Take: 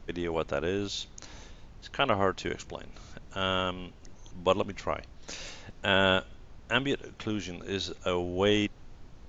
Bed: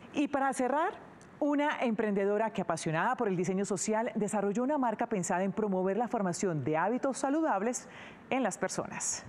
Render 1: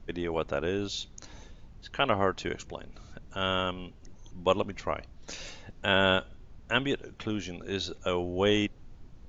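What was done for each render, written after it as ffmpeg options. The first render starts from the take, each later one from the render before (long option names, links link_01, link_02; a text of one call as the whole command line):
ffmpeg -i in.wav -af "afftdn=noise_reduction=6:noise_floor=-51" out.wav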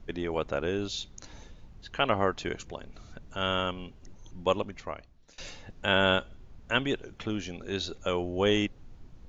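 ffmpeg -i in.wav -filter_complex "[0:a]asplit=2[link_01][link_02];[link_01]atrim=end=5.38,asetpts=PTS-STARTPTS,afade=type=out:start_time=4.37:duration=1.01:silence=0.0841395[link_03];[link_02]atrim=start=5.38,asetpts=PTS-STARTPTS,afade=type=in:duration=0.004:curve=hsin:silence=0.0841395[link_04];[link_03][link_04]concat=n=2:v=0:a=1" out.wav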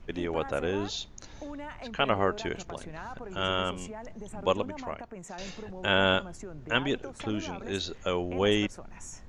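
ffmpeg -i in.wav -i bed.wav -filter_complex "[1:a]volume=-11.5dB[link_01];[0:a][link_01]amix=inputs=2:normalize=0" out.wav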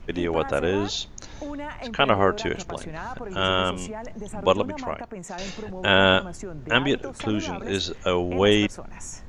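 ffmpeg -i in.wav -af "volume=6.5dB" out.wav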